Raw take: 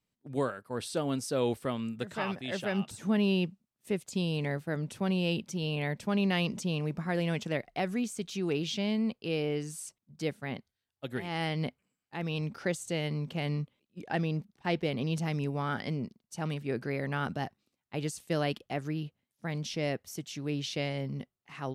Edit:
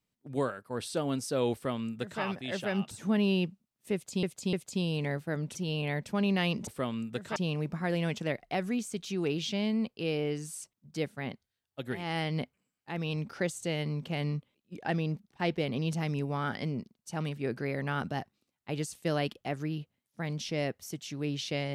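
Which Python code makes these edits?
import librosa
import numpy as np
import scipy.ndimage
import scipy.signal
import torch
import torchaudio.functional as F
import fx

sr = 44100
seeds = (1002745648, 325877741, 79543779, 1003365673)

y = fx.edit(x, sr, fx.duplicate(start_s=1.53, length_s=0.69, to_s=6.61),
    fx.repeat(start_s=3.93, length_s=0.3, count=3),
    fx.cut(start_s=4.95, length_s=0.54), tone=tone)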